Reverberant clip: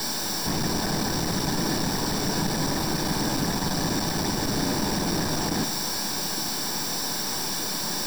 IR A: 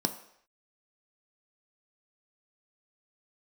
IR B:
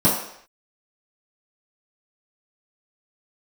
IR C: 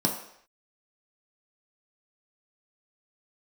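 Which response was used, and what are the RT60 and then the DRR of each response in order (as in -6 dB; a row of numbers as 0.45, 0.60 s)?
A; not exponential, not exponential, not exponential; 6.5, -10.0, -0.5 dB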